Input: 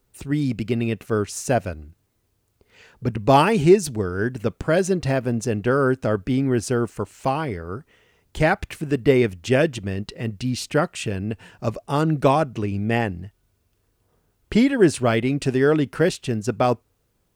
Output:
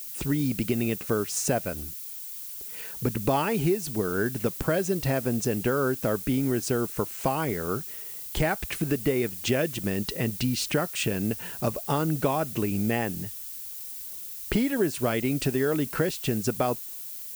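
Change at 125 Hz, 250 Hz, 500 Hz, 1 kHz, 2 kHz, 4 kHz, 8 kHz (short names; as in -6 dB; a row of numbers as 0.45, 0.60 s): -5.5, -5.5, -6.5, -7.5, -5.5, -2.0, +1.5 dB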